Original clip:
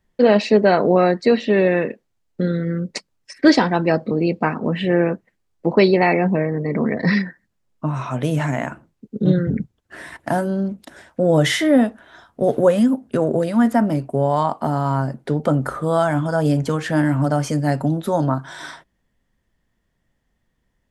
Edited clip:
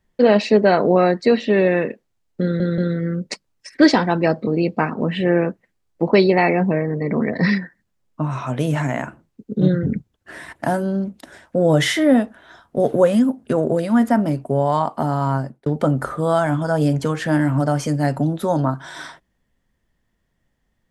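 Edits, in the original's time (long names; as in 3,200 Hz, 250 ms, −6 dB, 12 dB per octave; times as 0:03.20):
0:02.42: stutter 0.18 s, 3 plays
0:15.01–0:15.30: fade out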